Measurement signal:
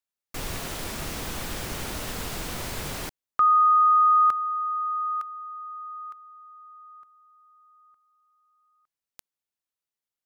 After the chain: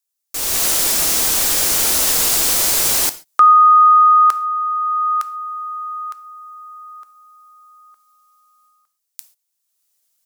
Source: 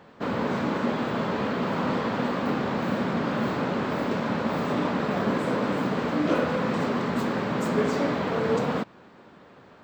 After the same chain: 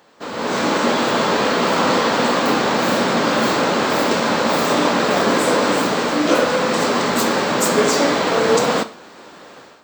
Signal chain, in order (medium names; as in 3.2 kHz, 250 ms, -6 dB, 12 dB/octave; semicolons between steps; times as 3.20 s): tone controls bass -11 dB, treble +14 dB; gated-style reverb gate 160 ms falling, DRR 11 dB; level rider gain up to 13 dB; trim -1 dB